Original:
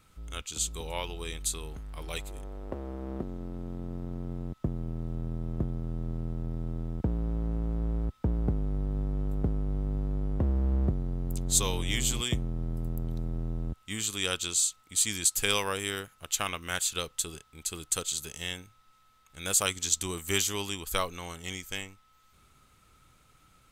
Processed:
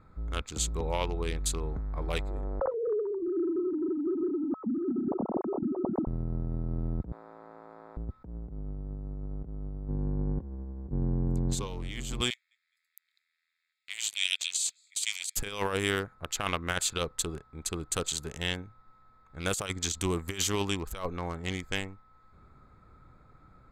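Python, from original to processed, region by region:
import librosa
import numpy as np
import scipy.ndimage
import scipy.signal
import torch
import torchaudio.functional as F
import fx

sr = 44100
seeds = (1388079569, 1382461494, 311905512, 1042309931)

y = fx.chain(x, sr, fx.sine_speech(),
    fx.lowpass(hz=1300.0, slope=24),
    fx.band_squash(depth_pct=100), at=(2.6, 6.07))
y = fx.chain(y, sr, fx.highpass(hz=920.0, slope=12),
    fx.tilt_eq(slope=1.5), at=(7.12, 7.97))
y = fx.chain(y, sr, fx.high_shelf(hz=5700.0, db=-7.0),
    fx.notch_comb(f0_hz=640.0), at=(9.88, 11.67))
y = fx.chain(y, sr, fx.steep_highpass(hz=2100.0, slope=48),
    fx.echo_feedback(ms=210, feedback_pct=34, wet_db=-21), at=(12.3, 15.37))
y = fx.wiener(y, sr, points=15)
y = fx.high_shelf(y, sr, hz=5600.0, db=-11.0)
y = fx.over_compress(y, sr, threshold_db=-34.0, ratio=-0.5)
y = y * librosa.db_to_amplitude(4.0)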